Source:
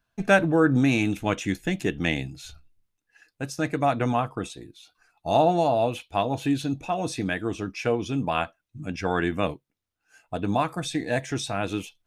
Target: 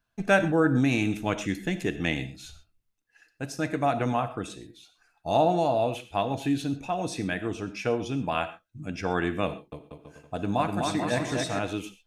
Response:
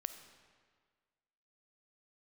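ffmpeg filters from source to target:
-filter_complex "[0:a]asettb=1/sr,asplit=3[a][b][c];[a]atrim=end=9.474[d];[b]atrim=start=9.47:end=11.59,asetpts=PTS-STARTPTS,afade=t=in:d=0.004:c=qsin,afade=t=out:st=2.116:d=0.004:c=qsin,aecho=1:1:250|437.5|578.1|683.6|762.7:0.631|0.398|0.251|0.158|0.1,atrim=end_sample=93492[e];[c]atrim=start=11.586[f];[d][e]acrossfade=d=0.004:c1=hsin:c2=qsin[g];[g][f]acrossfade=d=0.004:c1=qsin:c2=hsin[h];[1:a]atrim=start_sample=2205,atrim=end_sample=6174[i];[h][i]afir=irnorm=-1:irlink=0"

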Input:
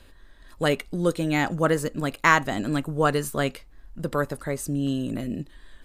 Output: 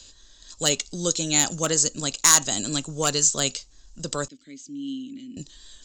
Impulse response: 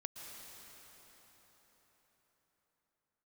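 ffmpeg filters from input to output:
-filter_complex "[0:a]acrossover=split=120|4700[a][b][c];[c]crystalizer=i=4:c=0[d];[a][b][d]amix=inputs=3:normalize=0,aresample=16000,aresample=44100,asoftclip=type=hard:threshold=-10dB,aexciter=amount=7:drive=3.1:freq=2.9k,asettb=1/sr,asplit=3[e][f][g];[e]atrim=end=4.284[h];[f]atrim=start=4.28:end=5.37,asetpts=PTS-STARTPTS,afade=t=in:d=0.004:c=qsin,afade=t=out:st=1.086:d=0.004:c=qsin,asplit=3[i][j][k];[i]bandpass=f=270:t=q:w=8,volume=0dB[l];[j]bandpass=f=2.29k:t=q:w=8,volume=-6dB[m];[k]bandpass=f=3.01k:t=q:w=8,volume=-9dB[n];[l][m][n]amix=inputs=3:normalize=0[o];[g]atrim=start=5.366[p];[h][o]acrossfade=d=0.004:c1=hsin:c2=qsin[q];[q][p]acrossfade=d=0.004:c1=qsin:c2=hsin,volume=-4.5dB"

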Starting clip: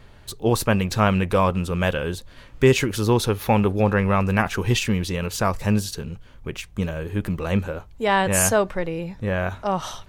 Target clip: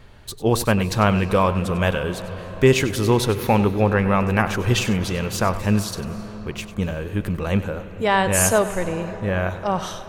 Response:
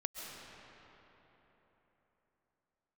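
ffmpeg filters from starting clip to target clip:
-filter_complex "[0:a]asplit=2[a][b];[1:a]atrim=start_sample=2205,asetrate=35721,aresample=44100,adelay=97[c];[b][c]afir=irnorm=-1:irlink=0,volume=-12.5dB[d];[a][d]amix=inputs=2:normalize=0,volume=1dB"

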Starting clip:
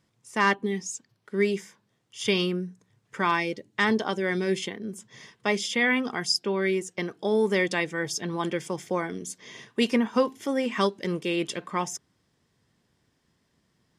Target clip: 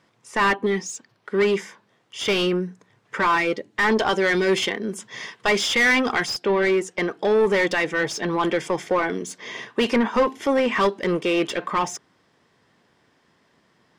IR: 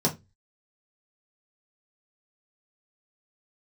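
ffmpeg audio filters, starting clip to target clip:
-filter_complex "[0:a]asetnsamples=n=441:p=0,asendcmd='3.97 lowpass f 2900;6.26 lowpass f 1500',asplit=2[a][b];[b]highpass=f=720:p=1,volume=22dB,asoftclip=type=tanh:threshold=-9.5dB[c];[a][c]amix=inputs=2:normalize=0,lowpass=f=1.6k:p=1,volume=-6dB"

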